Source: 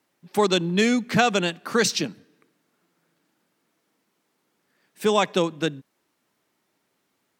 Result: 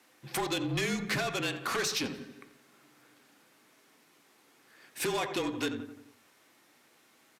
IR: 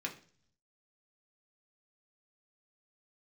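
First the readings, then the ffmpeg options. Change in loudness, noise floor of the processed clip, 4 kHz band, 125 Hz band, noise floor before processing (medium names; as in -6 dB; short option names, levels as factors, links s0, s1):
-9.5 dB, -65 dBFS, -7.5 dB, -8.5 dB, -74 dBFS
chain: -filter_complex "[0:a]highpass=55,equalizer=f=98:t=o:w=2.2:g=-13.5,acompressor=threshold=0.0282:ratio=16,asplit=2[s0][s1];[s1]adelay=87,lowpass=f=2000:p=1,volume=0.2,asplit=2[s2][s3];[s3]adelay=87,lowpass=f=2000:p=1,volume=0.53,asplit=2[s4][s5];[s5]adelay=87,lowpass=f=2000:p=1,volume=0.53,asplit=2[s6][s7];[s7]adelay=87,lowpass=f=2000:p=1,volume=0.53,asplit=2[s8][s9];[s9]adelay=87,lowpass=f=2000:p=1,volume=0.53[s10];[s0][s2][s4][s6][s8][s10]amix=inputs=6:normalize=0,aeval=exprs='0.0944*sin(PI/2*2*val(0)/0.0944)':c=same,aeval=exprs='0.0944*(cos(1*acos(clip(val(0)/0.0944,-1,1)))-cos(1*PI/2))+0.0133*(cos(5*acos(clip(val(0)/0.0944,-1,1)))-cos(5*PI/2))':c=same,afreqshift=-36,asplit=2[s11][s12];[1:a]atrim=start_sample=2205[s13];[s12][s13]afir=irnorm=-1:irlink=0,volume=0.562[s14];[s11][s14]amix=inputs=2:normalize=0,aresample=32000,aresample=44100,volume=0.422"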